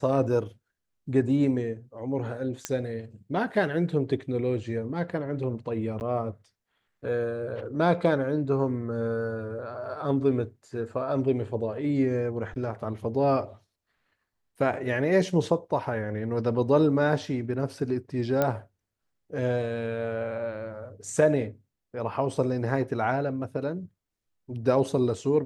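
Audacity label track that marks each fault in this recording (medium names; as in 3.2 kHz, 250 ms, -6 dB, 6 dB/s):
2.650000	2.650000	pop -13 dBFS
6.000000	6.010000	dropout 9.9 ms
18.420000	18.420000	pop -11 dBFS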